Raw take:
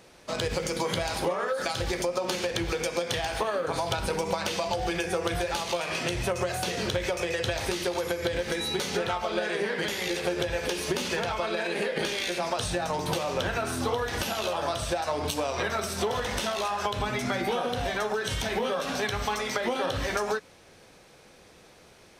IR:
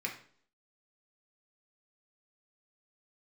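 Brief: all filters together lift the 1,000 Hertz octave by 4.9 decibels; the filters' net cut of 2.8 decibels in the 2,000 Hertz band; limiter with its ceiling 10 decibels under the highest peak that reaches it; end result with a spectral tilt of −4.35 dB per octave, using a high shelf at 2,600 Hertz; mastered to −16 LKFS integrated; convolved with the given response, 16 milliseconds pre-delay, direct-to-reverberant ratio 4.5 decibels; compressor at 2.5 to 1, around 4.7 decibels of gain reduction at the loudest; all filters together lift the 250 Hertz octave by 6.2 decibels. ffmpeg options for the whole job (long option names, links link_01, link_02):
-filter_complex "[0:a]equalizer=frequency=250:width_type=o:gain=8.5,equalizer=frequency=1000:width_type=o:gain=7.5,equalizer=frequency=2000:width_type=o:gain=-4,highshelf=frequency=2600:gain=-6,acompressor=threshold=-27dB:ratio=2.5,alimiter=level_in=1dB:limit=-24dB:level=0:latency=1,volume=-1dB,asplit=2[link_01][link_02];[1:a]atrim=start_sample=2205,adelay=16[link_03];[link_02][link_03]afir=irnorm=-1:irlink=0,volume=-8dB[link_04];[link_01][link_04]amix=inputs=2:normalize=0,volume=17dB"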